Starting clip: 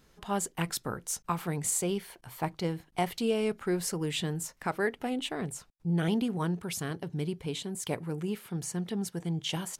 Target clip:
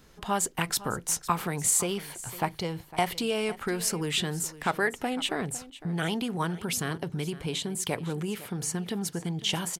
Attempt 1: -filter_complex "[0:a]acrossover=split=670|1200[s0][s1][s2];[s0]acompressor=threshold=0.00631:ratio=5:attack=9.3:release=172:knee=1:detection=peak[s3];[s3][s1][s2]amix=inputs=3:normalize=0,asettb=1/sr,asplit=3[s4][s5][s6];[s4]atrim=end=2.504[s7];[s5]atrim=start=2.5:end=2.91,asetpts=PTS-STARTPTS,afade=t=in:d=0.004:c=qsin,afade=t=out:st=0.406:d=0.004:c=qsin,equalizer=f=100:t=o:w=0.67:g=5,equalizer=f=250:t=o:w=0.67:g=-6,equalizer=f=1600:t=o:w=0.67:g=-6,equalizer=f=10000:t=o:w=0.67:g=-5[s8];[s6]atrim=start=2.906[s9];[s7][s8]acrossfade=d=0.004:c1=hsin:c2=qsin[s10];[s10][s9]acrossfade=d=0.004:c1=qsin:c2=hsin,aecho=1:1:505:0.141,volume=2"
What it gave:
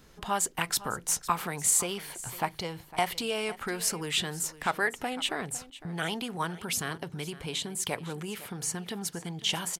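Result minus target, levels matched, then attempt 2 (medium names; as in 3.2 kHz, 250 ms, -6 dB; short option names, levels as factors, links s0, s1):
compression: peak gain reduction +6.5 dB
-filter_complex "[0:a]acrossover=split=670|1200[s0][s1][s2];[s0]acompressor=threshold=0.0158:ratio=5:attack=9.3:release=172:knee=1:detection=peak[s3];[s3][s1][s2]amix=inputs=3:normalize=0,asettb=1/sr,asplit=3[s4][s5][s6];[s4]atrim=end=2.504[s7];[s5]atrim=start=2.5:end=2.91,asetpts=PTS-STARTPTS,afade=t=in:d=0.004:c=qsin,afade=t=out:st=0.406:d=0.004:c=qsin,equalizer=f=100:t=o:w=0.67:g=5,equalizer=f=250:t=o:w=0.67:g=-6,equalizer=f=1600:t=o:w=0.67:g=-6,equalizer=f=10000:t=o:w=0.67:g=-5[s8];[s6]atrim=start=2.906[s9];[s7][s8]acrossfade=d=0.004:c1=hsin:c2=qsin[s10];[s10][s9]acrossfade=d=0.004:c1=qsin:c2=hsin,aecho=1:1:505:0.141,volume=2"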